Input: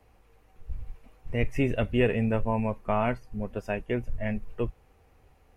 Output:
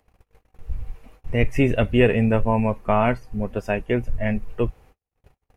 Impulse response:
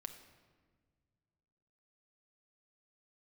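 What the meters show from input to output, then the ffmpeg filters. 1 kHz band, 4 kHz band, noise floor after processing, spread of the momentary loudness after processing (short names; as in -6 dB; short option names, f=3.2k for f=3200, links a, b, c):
+7.0 dB, +7.0 dB, -82 dBFS, 17 LU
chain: -af "agate=range=-56dB:threshold=-54dB:ratio=16:detection=peak,acompressor=mode=upward:threshold=-46dB:ratio=2.5,volume=7dB"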